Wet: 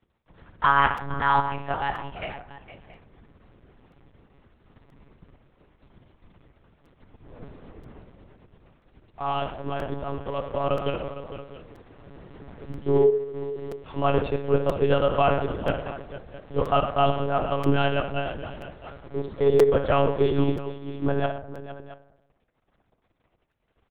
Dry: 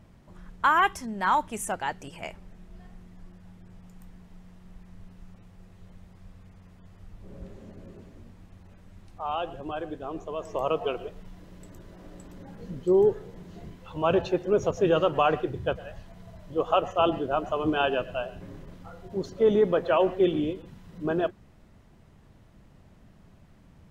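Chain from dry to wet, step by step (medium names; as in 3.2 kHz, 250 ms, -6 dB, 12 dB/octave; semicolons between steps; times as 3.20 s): high-pass 67 Hz 6 dB/octave; in parallel at -1.5 dB: compression, threshold -33 dBFS, peak gain reduction 15.5 dB; on the sum: crossover distortion -45 dBFS; on a send: multi-tap echo 59/77/110/460/672 ms -11.5/-16.5/-15.5/-13.5/-17.5 dB; on the sum: FDN reverb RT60 0.97 s, low-frequency decay 1.1×, high-frequency decay 0.4×, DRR 9.5 dB; monotone LPC vocoder at 8 kHz 140 Hz; crackling interface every 0.98 s, samples 256, repeat, from 0.97 s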